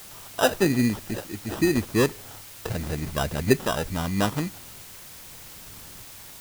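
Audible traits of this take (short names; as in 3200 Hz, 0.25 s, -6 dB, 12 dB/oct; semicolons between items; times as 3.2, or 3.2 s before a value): aliases and images of a low sample rate 2200 Hz, jitter 0%; tremolo saw up 0.83 Hz, depth 60%; a quantiser's noise floor 8-bit, dither triangular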